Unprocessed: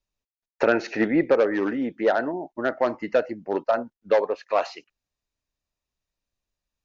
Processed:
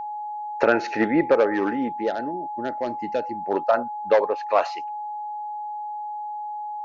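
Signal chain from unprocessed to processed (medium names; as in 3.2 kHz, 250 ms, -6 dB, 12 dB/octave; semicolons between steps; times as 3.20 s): peaking EQ 1.1 kHz +2.5 dB 1.8 oct, from 1.88 s -12 dB, from 3.35 s +4 dB; whistle 840 Hz -29 dBFS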